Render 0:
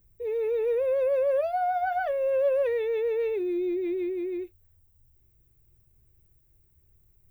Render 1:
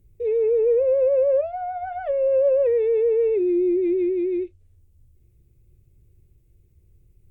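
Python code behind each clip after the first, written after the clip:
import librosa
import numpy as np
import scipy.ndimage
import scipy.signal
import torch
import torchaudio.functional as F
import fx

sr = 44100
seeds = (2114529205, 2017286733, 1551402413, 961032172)

y = fx.high_shelf(x, sr, hz=2600.0, db=-8.5)
y = fx.env_lowpass_down(y, sr, base_hz=1500.0, full_db=-24.5)
y = fx.band_shelf(y, sr, hz=1100.0, db=-10.5, octaves=1.7)
y = y * librosa.db_to_amplitude(8.0)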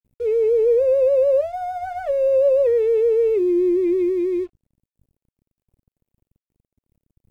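y = np.sign(x) * np.maximum(np.abs(x) - 10.0 ** (-50.5 / 20.0), 0.0)
y = y * librosa.db_to_amplitude(2.5)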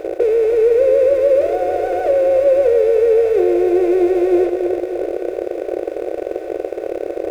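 y = fx.bin_compress(x, sr, power=0.2)
y = fx.echo_feedback(y, sr, ms=301, feedback_pct=59, wet_db=-8.0)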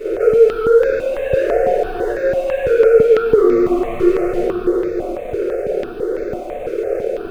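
y = 10.0 ** (-14.5 / 20.0) * np.tanh(x / 10.0 ** (-14.5 / 20.0))
y = fx.room_shoebox(y, sr, seeds[0], volume_m3=48.0, walls='mixed', distance_m=1.9)
y = fx.phaser_held(y, sr, hz=6.0, low_hz=210.0, high_hz=3000.0)
y = y * librosa.db_to_amplitude(-4.5)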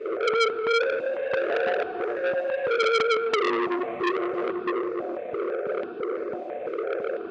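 y = fx.bandpass_edges(x, sr, low_hz=200.0, high_hz=2900.0)
y = fx.transformer_sat(y, sr, knee_hz=2300.0)
y = y * librosa.db_to_amplitude(-6.5)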